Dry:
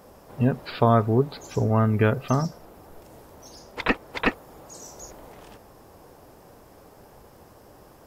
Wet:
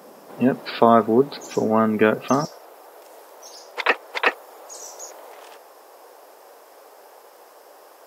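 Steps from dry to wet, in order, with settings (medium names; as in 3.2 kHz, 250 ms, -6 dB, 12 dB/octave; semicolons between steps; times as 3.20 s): high-pass 200 Hz 24 dB/octave, from 2.45 s 440 Hz; trim +5.5 dB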